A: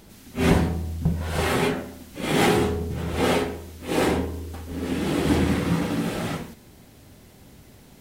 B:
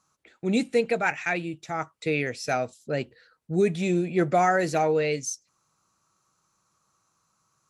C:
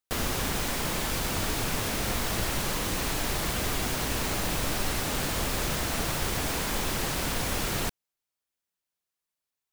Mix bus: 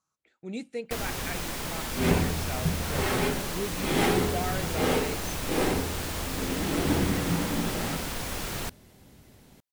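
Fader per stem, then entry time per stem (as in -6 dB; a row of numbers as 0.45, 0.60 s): -5.0, -12.0, -4.0 dB; 1.60, 0.00, 0.80 s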